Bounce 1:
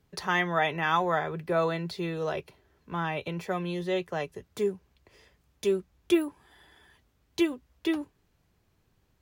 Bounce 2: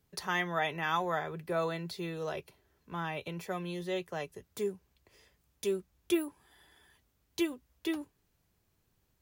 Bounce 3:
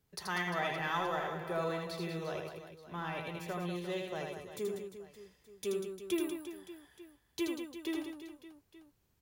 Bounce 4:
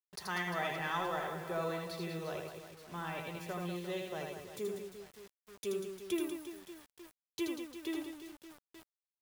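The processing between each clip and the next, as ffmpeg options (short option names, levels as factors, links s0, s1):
-af "highshelf=f=6600:g=10.5,volume=0.501"
-filter_complex "[0:a]asplit=2[s0][s1];[s1]volume=42.2,asoftclip=hard,volume=0.0237,volume=0.376[s2];[s0][s2]amix=inputs=2:normalize=0,aecho=1:1:80|192|348.8|568.3|875.6:0.631|0.398|0.251|0.158|0.1,volume=0.501"
-af "acrusher=bits=8:mix=0:aa=0.000001,volume=0.841"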